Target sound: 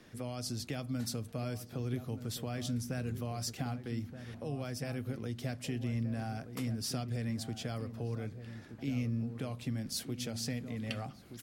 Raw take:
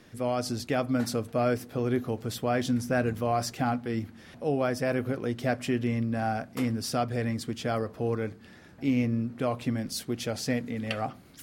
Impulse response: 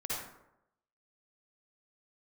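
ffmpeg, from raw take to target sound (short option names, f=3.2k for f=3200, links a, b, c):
-filter_complex "[0:a]acrossover=split=190|3000[a][b][c];[b]acompressor=threshold=-39dB:ratio=6[d];[a][d][c]amix=inputs=3:normalize=0,asplit=2[e][f];[f]adelay=1224,volume=-10dB,highshelf=f=4k:g=-27.6[g];[e][g]amix=inputs=2:normalize=0,volume=-3dB"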